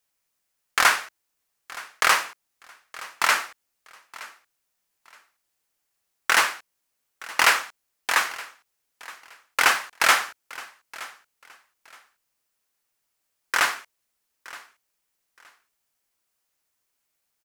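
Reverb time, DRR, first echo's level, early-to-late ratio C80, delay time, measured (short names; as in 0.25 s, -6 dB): none, none, -19.5 dB, none, 0.92 s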